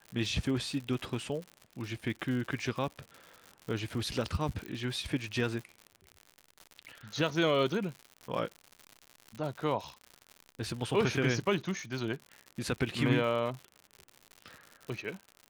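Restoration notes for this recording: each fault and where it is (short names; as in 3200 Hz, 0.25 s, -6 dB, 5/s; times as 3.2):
crackle 110/s -38 dBFS
4.66 pop -27 dBFS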